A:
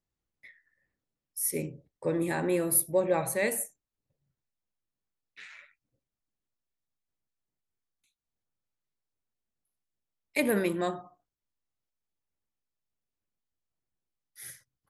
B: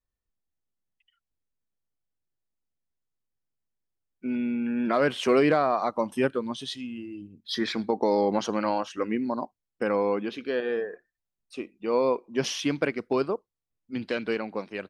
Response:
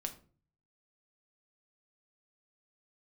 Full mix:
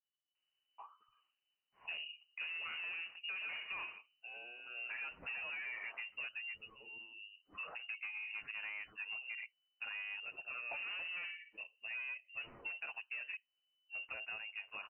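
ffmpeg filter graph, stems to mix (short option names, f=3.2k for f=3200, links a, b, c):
-filter_complex "[0:a]alimiter=limit=-19.5dB:level=0:latency=1:release=11,adelay=350,volume=-1dB,asplit=2[a][b];[b]volume=-20dB[c];[1:a]asplit=2[d][e];[e]adelay=8.8,afreqshift=-0.37[f];[d][f]amix=inputs=2:normalize=1,volume=-9dB,asplit=2[g][h];[h]apad=whole_len=672171[i];[a][i]sidechaincompress=threshold=-39dB:ratio=8:attack=16:release=371[j];[2:a]atrim=start_sample=2205[k];[c][k]afir=irnorm=-1:irlink=0[l];[j][g][l]amix=inputs=3:normalize=0,asoftclip=type=tanh:threshold=-33dB,lowpass=f=2.6k:t=q:w=0.5098,lowpass=f=2.6k:t=q:w=0.6013,lowpass=f=2.6k:t=q:w=0.9,lowpass=f=2.6k:t=q:w=2.563,afreqshift=-3000,acompressor=threshold=-41dB:ratio=6"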